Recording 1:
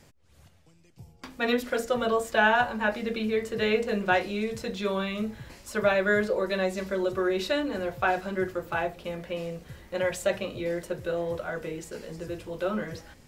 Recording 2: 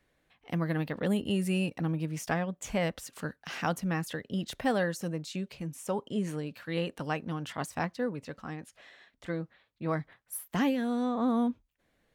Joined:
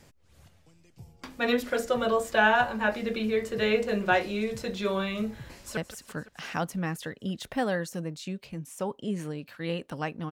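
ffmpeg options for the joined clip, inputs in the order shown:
-filter_complex "[0:a]apad=whole_dur=10.31,atrim=end=10.31,atrim=end=5.772[a];[1:a]atrim=start=2.848:end=7.39[b];[a][b]acrossfade=d=0.004:c1=hsin:c2=hsin,asplit=2[c][d];[d]afade=t=in:st=5.43:d=0.01,afade=t=out:st=5.77:d=0.01,aecho=0:1:170|340|510|680|850|1020|1190|1360|1530|1700|1870|2040:0.158489|0.126791|0.101433|0.0811465|0.0649172|0.0519338|0.041547|0.0332376|0.0265901|0.0212721|0.0170177|0.0136141[e];[c][e]amix=inputs=2:normalize=0"

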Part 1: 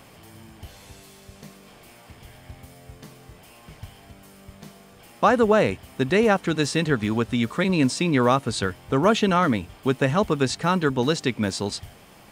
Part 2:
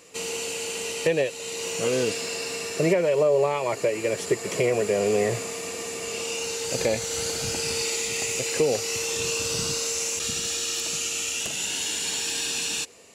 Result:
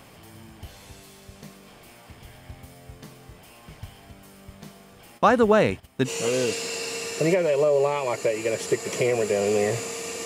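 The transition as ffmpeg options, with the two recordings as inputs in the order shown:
-filter_complex "[0:a]asplit=3[a][b][c];[a]afade=t=out:st=5.17:d=0.02[d];[b]agate=range=-11dB:threshold=-43dB:ratio=16:release=100:detection=peak,afade=t=in:st=5.17:d=0.02,afade=t=out:st=6.1:d=0.02[e];[c]afade=t=in:st=6.1:d=0.02[f];[d][e][f]amix=inputs=3:normalize=0,apad=whole_dur=10.25,atrim=end=10.25,atrim=end=6.1,asetpts=PTS-STARTPTS[g];[1:a]atrim=start=1.63:end=5.84,asetpts=PTS-STARTPTS[h];[g][h]acrossfade=d=0.06:c1=tri:c2=tri"

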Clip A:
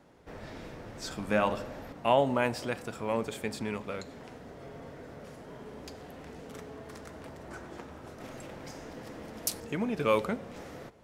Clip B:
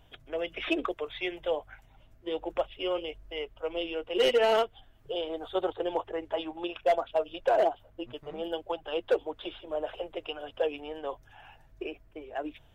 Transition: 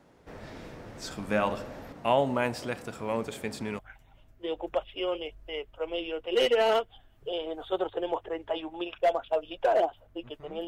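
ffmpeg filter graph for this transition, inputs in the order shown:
-filter_complex "[0:a]apad=whole_dur=10.67,atrim=end=10.67,atrim=end=3.792[a];[1:a]atrim=start=1.618:end=8.5[b];[a][b]acrossfade=d=0.004:c1=hsin:c2=hsin"

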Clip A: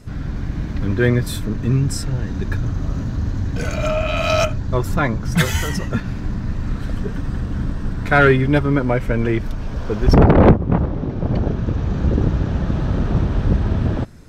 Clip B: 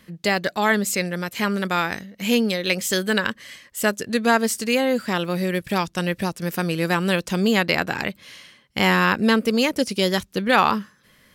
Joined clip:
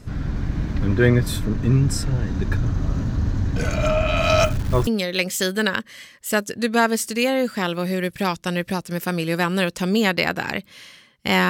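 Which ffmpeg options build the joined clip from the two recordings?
-filter_complex "[0:a]asettb=1/sr,asplit=3[a][b][c];[a]atrim=end=4.434[d];[b]atrim=start=4.43:end=4.87,asetpts=PTS-STARTPTS,afade=t=in:d=0.004:c=qsin,afade=t=out:st=0.436:d=0.004:c=qsin,acrusher=bits=7:dc=4:mix=0:aa=0.000001[e];[c]atrim=start=4.866[f];[d][e]acrossfade=d=0.004:c1=hsin:c2=qsin[g];[g][f]acrossfade=d=0.004:c1=qsin:c2=hsin,apad=whole_dur=11.49,atrim=end=11.49,atrim=end=4.872[h];[1:a]atrim=start=2.378:end=9[i];[h][i]acrossfade=d=0.004:c1=hsin:c2=hsin"

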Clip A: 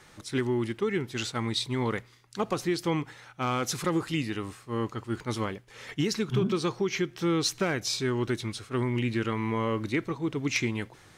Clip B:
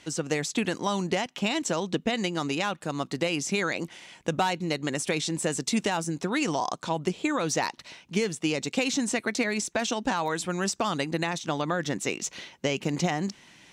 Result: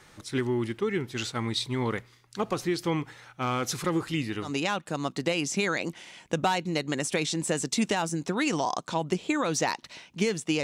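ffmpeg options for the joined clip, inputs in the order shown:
-filter_complex "[0:a]apad=whole_dur=10.63,atrim=end=10.63,atrim=end=4.54,asetpts=PTS-STARTPTS[a];[1:a]atrim=start=2.35:end=8.58,asetpts=PTS-STARTPTS[b];[a][b]acrossfade=d=0.14:c1=tri:c2=tri"

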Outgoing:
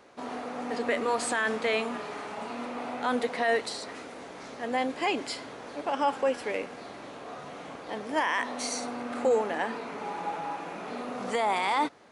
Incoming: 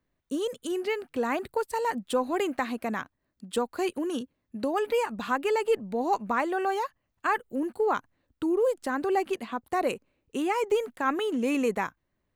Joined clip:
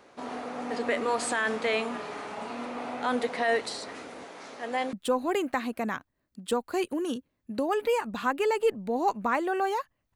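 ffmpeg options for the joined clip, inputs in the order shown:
-filter_complex "[0:a]asettb=1/sr,asplit=3[a][b][c];[a]atrim=end=4.254[d];[b]atrim=start=4.25:end=4.93,asetpts=PTS-STARTPTS,afade=t=in:d=0.004:c=qsin,afade=t=out:st=0.676:d=0.004:c=qsin,highpass=f=350:p=1[e];[c]atrim=start=4.926[f];[d][e]acrossfade=d=0.004:c1=hsin:c2=qsin[g];[g][f]acrossfade=d=0.004:c1=qsin:c2=hsin,apad=whole_dur=10.15,atrim=end=10.15,atrim=end=4.932[h];[1:a]atrim=start=1.978:end=7.2[i];[h][i]acrossfade=d=0.004:c1=hsin:c2=hsin"

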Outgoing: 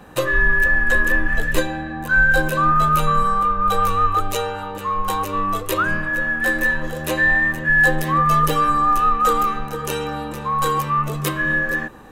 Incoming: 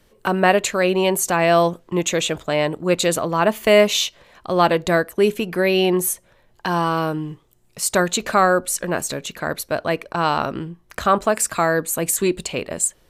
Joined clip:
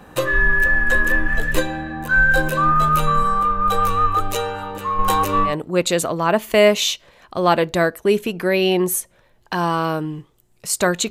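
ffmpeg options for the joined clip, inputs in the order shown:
-filter_complex "[0:a]asettb=1/sr,asplit=3[a][b][c];[a]atrim=end=4.994[d];[b]atrim=start=4.99:end=5.55,asetpts=PTS-STARTPTS,afade=t=in:d=0.004:c=qsin,afade=t=out:st=0.556:d=0.004:c=qsin,acontrast=20[e];[c]atrim=start=5.546[f];[d][e]acrossfade=d=0.004:c1=hsin:c2=qsin[g];[g][f]acrossfade=d=0.004:c1=qsin:c2=hsin,apad=whole_dur=11.1,atrim=end=11.1,atrim=end=5.55,asetpts=PTS-STARTPTS[h];[1:a]atrim=start=2.56:end=8.23,asetpts=PTS-STARTPTS[i];[h][i]acrossfade=d=0.12:c1=tri:c2=tri"

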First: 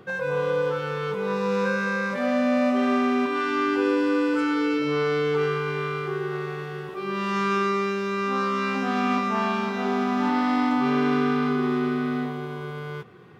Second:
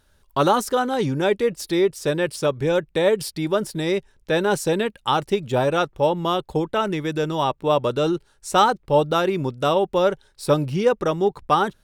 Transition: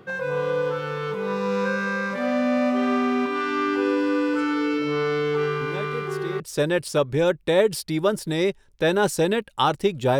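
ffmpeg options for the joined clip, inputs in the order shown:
-filter_complex "[1:a]asplit=2[a][b];[0:a]apad=whole_dur=10.19,atrim=end=10.19,atrim=end=6.402[c];[b]atrim=start=1.878:end=5.67[d];[a]atrim=start=1.09:end=1.88,asetpts=PTS-STARTPTS,volume=-13dB,afade=t=in:d=0.004:c=hsin,afade=t=out:st=0.786:d=0.004:c=hsin,adelay=247401S[e];[c][d]acrossfade=d=0.004:c1=hsin:c2=hsin[f];[f][e]amix=inputs=2:normalize=0"

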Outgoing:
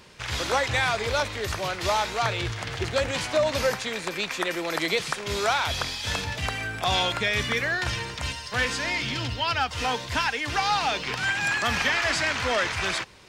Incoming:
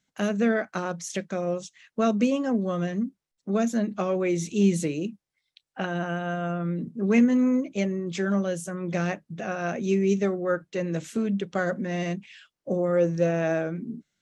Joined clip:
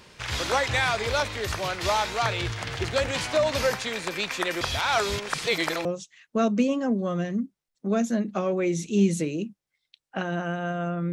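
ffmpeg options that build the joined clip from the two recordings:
-filter_complex "[0:a]apad=whole_dur=11.12,atrim=end=11.12,asplit=2[a][b];[a]atrim=end=4.612[c];[b]atrim=start=4.608:end=5.852,asetpts=PTS-STARTPTS,areverse[d];[1:a]atrim=start=1.478:end=6.75[e];[c][d]acrossfade=d=0.004:c1=hsin:c2=hsin[f];[f][e]acrossfade=d=0.004:c1=hsin:c2=hsin"

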